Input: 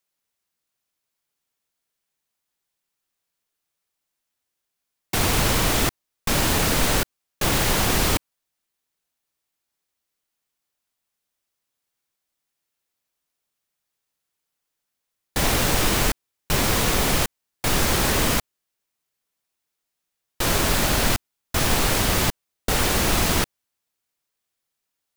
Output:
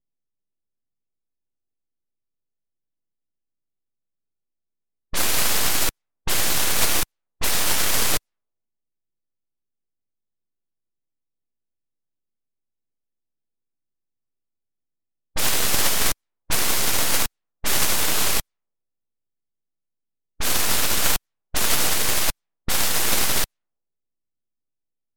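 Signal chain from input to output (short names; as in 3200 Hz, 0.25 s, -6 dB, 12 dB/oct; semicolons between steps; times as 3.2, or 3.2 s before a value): spectral contrast lowered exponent 0.58; full-wave rectifier; low-pass opened by the level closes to 360 Hz, open at -20 dBFS; gain +3 dB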